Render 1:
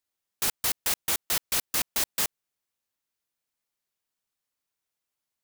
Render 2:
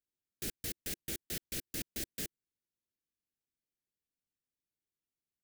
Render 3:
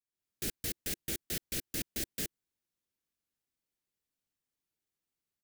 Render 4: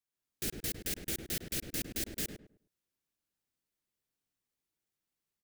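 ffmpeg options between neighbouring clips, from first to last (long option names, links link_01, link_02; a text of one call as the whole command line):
ffmpeg -i in.wav -af "firequalizer=gain_entry='entry(340,0);entry(1000,-30);entry(1600,-12)':delay=0.05:min_phase=1,volume=-1.5dB" out.wav
ffmpeg -i in.wav -af "dynaudnorm=framelen=110:gausssize=3:maxgain=11dB,volume=-8dB" out.wav
ffmpeg -i in.wav -filter_complex "[0:a]asplit=2[link_01][link_02];[link_02]adelay=104,lowpass=frequency=1200:poles=1,volume=-4.5dB,asplit=2[link_03][link_04];[link_04]adelay=104,lowpass=frequency=1200:poles=1,volume=0.29,asplit=2[link_05][link_06];[link_06]adelay=104,lowpass=frequency=1200:poles=1,volume=0.29,asplit=2[link_07][link_08];[link_08]adelay=104,lowpass=frequency=1200:poles=1,volume=0.29[link_09];[link_01][link_03][link_05][link_07][link_09]amix=inputs=5:normalize=0" out.wav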